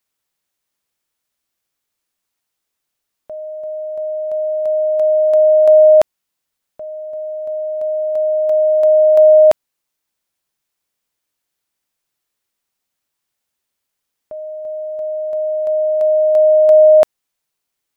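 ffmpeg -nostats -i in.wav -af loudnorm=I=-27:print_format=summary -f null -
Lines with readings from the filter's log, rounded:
Input Integrated:    -12.7 LUFS
Input True Peak:      -3.5 dBTP
Input LRA:            18.9 LU
Input Threshold:     -23.9 LUFS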